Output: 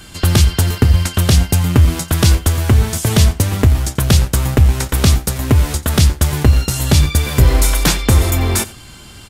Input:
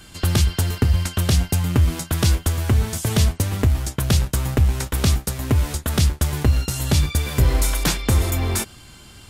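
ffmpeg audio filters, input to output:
ffmpeg -i in.wav -af "aecho=1:1:88:0.1,volume=6.5dB" out.wav

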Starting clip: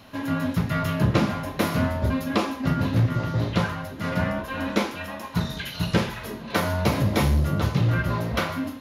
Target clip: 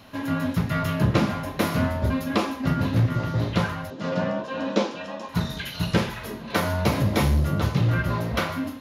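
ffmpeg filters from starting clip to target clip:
ffmpeg -i in.wav -filter_complex "[0:a]asettb=1/sr,asplit=3[link_01][link_02][link_03];[link_01]atrim=end=3.904[link_04];[link_02]atrim=start=3.9:end=5.29,asetpts=PTS-STARTPTS,afade=type=in:duration=0.004:curve=qsin,afade=type=out:start_time=1.386:duration=0.004:curve=qsin,highpass=frequency=140:width=0.5412,highpass=frequency=140:width=1.3066,equalizer=frequency=530:width_type=q:width=4:gain=6,equalizer=frequency=1400:width_type=q:width=4:gain=-4,equalizer=frequency=2100:width_type=q:width=4:gain=-8,lowpass=frequency=7000:width=0.5412,lowpass=frequency=7000:width=1.3066[link_05];[link_03]atrim=start=5.286[link_06];[link_04][link_05]acrossfade=duration=0.004:curve1=hsin:curve2=qsin[link_07];[link_07][link_06]acrossfade=duration=0.004:curve1=qsin:curve2=hsin" out.wav

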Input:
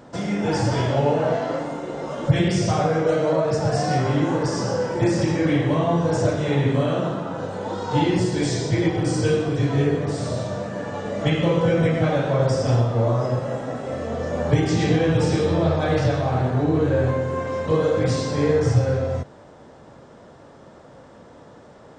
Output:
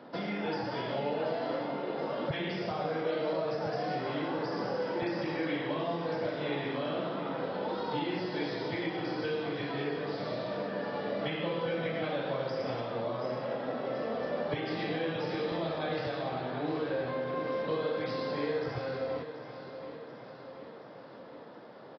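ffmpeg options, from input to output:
ffmpeg -i in.wav -filter_complex "[0:a]acrossover=split=650|2900[link_01][link_02][link_03];[link_01]acompressor=threshold=-29dB:ratio=4[link_04];[link_02]acompressor=threshold=-35dB:ratio=4[link_05];[link_03]acompressor=threshold=-42dB:ratio=4[link_06];[link_04][link_05][link_06]amix=inputs=3:normalize=0,acrossover=split=160[link_07][link_08];[link_07]acrusher=bits=3:mix=0:aa=0.5[link_09];[link_08]aecho=1:1:729|1458|2187|2916|3645|4374|5103:0.266|0.154|0.0895|0.0519|0.0301|0.0175|0.0101[link_10];[link_09][link_10]amix=inputs=2:normalize=0,aresample=11025,aresample=44100,volume=-3.5dB" out.wav

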